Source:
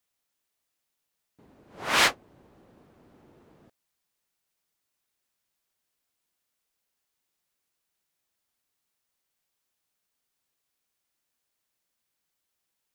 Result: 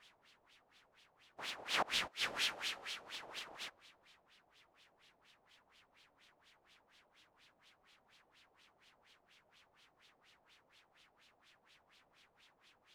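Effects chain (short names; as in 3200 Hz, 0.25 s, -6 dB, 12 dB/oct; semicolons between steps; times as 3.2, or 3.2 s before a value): spectral contrast lowered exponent 0.18; HPF 100 Hz; RIAA curve recording; reverb removal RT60 1.7 s; dynamic EQ 880 Hz, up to -6 dB, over -40 dBFS, Q 0.9; in parallel at +1 dB: limiter -3 dBFS, peak gain reduction 7.5 dB; on the sum: digital reverb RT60 2.9 s, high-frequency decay 1×, pre-delay 70 ms, DRR 20 dB; companded quantiser 6-bit; flipped gate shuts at -12 dBFS, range -27 dB; LFO low-pass sine 4.2 Hz 670–3500 Hz; gain +6.5 dB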